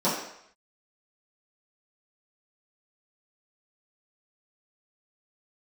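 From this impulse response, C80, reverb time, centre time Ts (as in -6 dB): 6.5 dB, 0.70 s, 48 ms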